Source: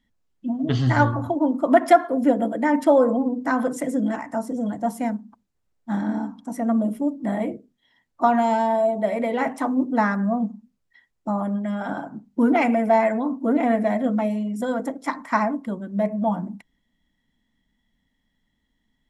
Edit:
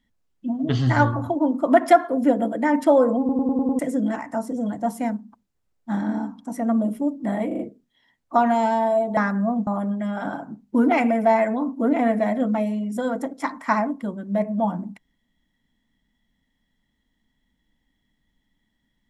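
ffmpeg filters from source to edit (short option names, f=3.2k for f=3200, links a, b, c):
-filter_complex "[0:a]asplit=12[a][b][c][d][e][f][g][h][i][j][k][l];[a]atrim=end=3.292[m];[b]atrim=start=3.188:end=3.292[n];[c]atrim=start=3.188:end=3.292[o];[d]atrim=start=3.188:end=3.292[p];[e]atrim=start=3.188:end=3.292[q];[f]atrim=start=3.188:end=3.292[r];[g]atrim=start=3.788:end=7.512[s];[h]atrim=start=7.468:end=7.512[t];[i]atrim=start=7.468:end=7.512[u];[j]atrim=start=7.468:end=9.052[v];[k]atrim=start=10.008:end=10.512[w];[l]atrim=start=11.308[x];[m][n]acrossfade=d=0.004:c1=hsin:c2=hsin[y];[y][o]acrossfade=d=0.004:c1=hsin:c2=hsin[z];[z][p]acrossfade=d=0.004:c1=hsin:c2=hsin[aa];[aa][q]acrossfade=d=0.004:c1=hsin:c2=hsin[ab];[ab][r]acrossfade=d=0.004:c1=hsin:c2=hsin[ac];[ac][s]acrossfade=d=0.004:c1=hsin:c2=hsin[ad];[ad][t]acrossfade=d=0.004:c1=hsin:c2=hsin[ae];[ae][u]acrossfade=d=0.004:c1=hsin:c2=hsin[af];[af][v]acrossfade=d=0.004:c1=hsin:c2=hsin[ag];[ag][w]acrossfade=d=0.004:c1=hsin:c2=hsin[ah];[ah][x]acrossfade=d=0.004:c1=hsin:c2=hsin"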